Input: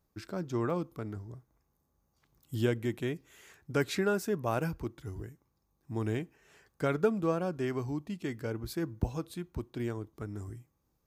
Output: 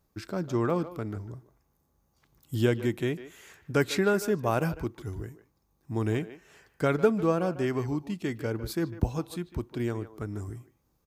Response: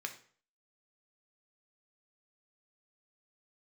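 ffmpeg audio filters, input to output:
-filter_complex "[0:a]asplit=2[link_01][link_02];[link_02]adelay=150,highpass=300,lowpass=3400,asoftclip=type=hard:threshold=-24.5dB,volume=-13dB[link_03];[link_01][link_03]amix=inputs=2:normalize=0,volume=4.5dB"

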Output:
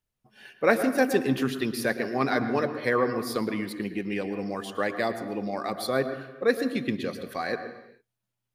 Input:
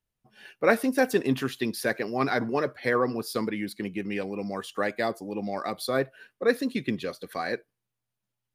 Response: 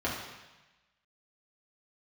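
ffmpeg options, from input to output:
-filter_complex "[0:a]asplit=2[link_01][link_02];[1:a]atrim=start_sample=2205,afade=type=out:start_time=0.4:duration=0.01,atrim=end_sample=18081,adelay=111[link_03];[link_02][link_03]afir=irnorm=-1:irlink=0,volume=-18dB[link_04];[link_01][link_04]amix=inputs=2:normalize=0"

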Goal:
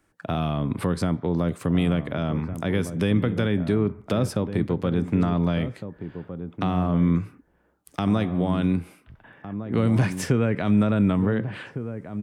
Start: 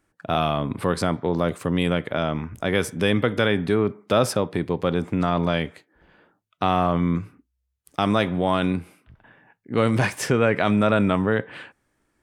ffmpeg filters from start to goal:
ffmpeg -i in.wav -filter_complex "[0:a]acrossover=split=300[link_01][link_02];[link_02]acompressor=threshold=-34dB:ratio=3[link_03];[link_01][link_03]amix=inputs=2:normalize=0,asplit=2[link_04][link_05];[link_05]adelay=1458,volume=-10dB,highshelf=frequency=4000:gain=-32.8[link_06];[link_04][link_06]amix=inputs=2:normalize=0,volume=2.5dB" out.wav

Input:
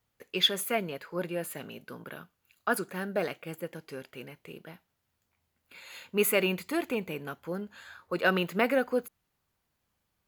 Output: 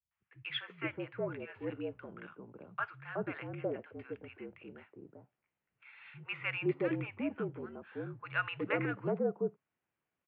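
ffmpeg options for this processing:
ffmpeg -i in.wav -filter_complex "[0:a]acrossover=split=150|930[link_01][link_02][link_03];[link_03]adelay=110[link_04];[link_02]adelay=480[link_05];[link_01][link_05][link_04]amix=inputs=3:normalize=0,highpass=frequency=160:width_type=q:width=0.5412,highpass=frequency=160:width_type=q:width=1.307,lowpass=frequency=2800:width_type=q:width=0.5176,lowpass=frequency=2800:width_type=q:width=0.7071,lowpass=frequency=2800:width_type=q:width=1.932,afreqshift=-53,volume=-4.5dB" out.wav

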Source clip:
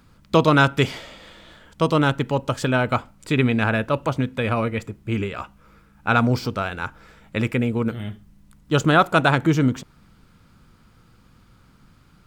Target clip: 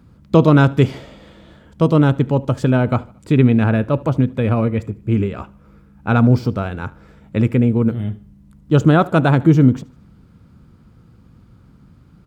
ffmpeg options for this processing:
ffmpeg -i in.wav -af "highpass=52,tiltshelf=frequency=680:gain=7.5,aecho=1:1:75|150|225:0.0708|0.0326|0.015,volume=1.5dB" out.wav

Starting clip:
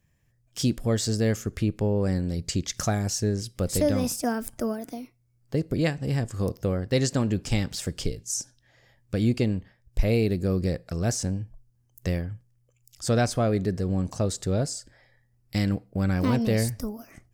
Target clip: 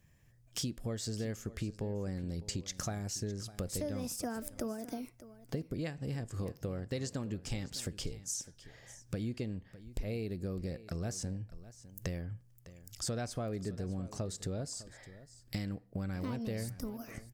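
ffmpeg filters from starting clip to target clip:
ffmpeg -i in.wav -filter_complex "[0:a]acompressor=threshold=-39dB:ratio=5,asplit=2[link_01][link_02];[link_02]aecho=0:1:606:0.15[link_03];[link_01][link_03]amix=inputs=2:normalize=0,volume=2.5dB" out.wav

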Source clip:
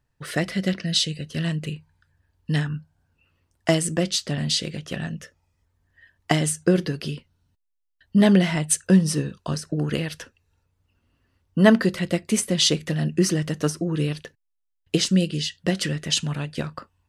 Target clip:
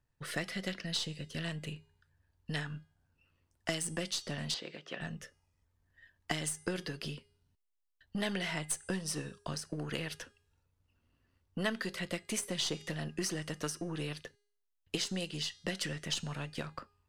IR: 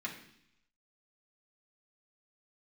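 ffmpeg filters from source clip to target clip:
-filter_complex "[0:a]aeval=exprs='if(lt(val(0),0),0.708*val(0),val(0))':channel_layout=same,bandreject=frequency=409.7:width_type=h:width=4,bandreject=frequency=819.4:width_type=h:width=4,bandreject=frequency=1229.1:width_type=h:width=4,bandreject=frequency=1638.8:width_type=h:width=4,bandreject=frequency=2048.5:width_type=h:width=4,bandreject=frequency=2458.2:width_type=h:width=4,bandreject=frequency=2867.9:width_type=h:width=4,bandreject=frequency=3277.6:width_type=h:width=4,bandreject=frequency=3687.3:width_type=h:width=4,bandreject=frequency=4097:width_type=h:width=4,bandreject=frequency=4506.7:width_type=h:width=4,bandreject=frequency=4916.4:width_type=h:width=4,bandreject=frequency=5326.1:width_type=h:width=4,bandreject=frequency=5735.8:width_type=h:width=4,bandreject=frequency=6145.5:width_type=h:width=4,bandreject=frequency=6555.2:width_type=h:width=4,bandreject=frequency=6964.9:width_type=h:width=4,bandreject=frequency=7374.6:width_type=h:width=4,bandreject=frequency=7784.3:width_type=h:width=4,bandreject=frequency=8194:width_type=h:width=4,bandreject=frequency=8603.7:width_type=h:width=4,bandreject=frequency=9013.4:width_type=h:width=4,bandreject=frequency=9423.1:width_type=h:width=4,bandreject=frequency=9832.8:width_type=h:width=4,bandreject=frequency=10242.5:width_type=h:width=4,bandreject=frequency=10652.2:width_type=h:width=4,acrossover=split=470|1400[link_01][link_02][link_03];[link_01]acompressor=threshold=-34dB:ratio=4[link_04];[link_02]acompressor=threshold=-35dB:ratio=4[link_05];[link_03]acompressor=threshold=-28dB:ratio=4[link_06];[link_04][link_05][link_06]amix=inputs=3:normalize=0,asettb=1/sr,asplit=3[link_07][link_08][link_09];[link_07]atrim=end=4.544[link_10];[link_08]atrim=start=4.54:end=5.01,asetpts=PTS-STARTPTS,afade=type=in:duration=0.004:curve=qsin,afade=type=out:start_time=0.466:duration=0.004:curve=qsin,highpass=320,lowpass=3800[link_11];[link_09]atrim=start=5.006[link_12];[link_10][link_11]acrossfade=duration=0.004:curve1=hsin:curve2=qsin[link_13];[link_13][link_12]acrossfade=duration=0.004:curve1=qsin:curve2=hsin,volume=-5.5dB"

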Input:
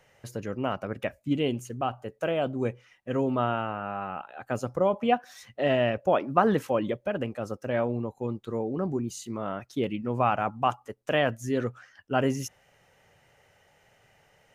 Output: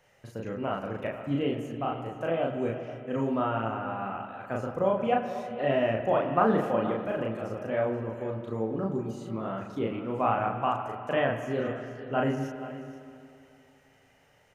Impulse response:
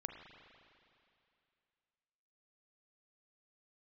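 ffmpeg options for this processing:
-filter_complex "[0:a]acrossover=split=2900[link_01][link_02];[link_02]acompressor=threshold=-55dB:ratio=4:attack=1:release=60[link_03];[link_01][link_03]amix=inputs=2:normalize=0,aecho=1:1:478:0.188,asplit=2[link_04][link_05];[1:a]atrim=start_sample=2205,adelay=36[link_06];[link_05][link_06]afir=irnorm=-1:irlink=0,volume=2.5dB[link_07];[link_04][link_07]amix=inputs=2:normalize=0,volume=-4dB"

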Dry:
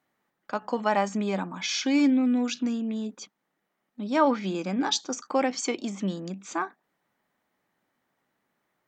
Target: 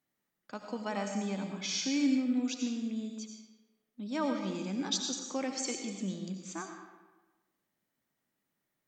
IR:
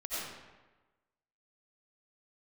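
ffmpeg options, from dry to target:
-filter_complex "[0:a]equalizer=frequency=930:width=0.44:gain=-9.5,asplit=2[link_01][link_02];[1:a]atrim=start_sample=2205,highshelf=frequency=5400:gain=11[link_03];[link_02][link_03]afir=irnorm=-1:irlink=0,volume=-6.5dB[link_04];[link_01][link_04]amix=inputs=2:normalize=0,volume=-6.5dB"

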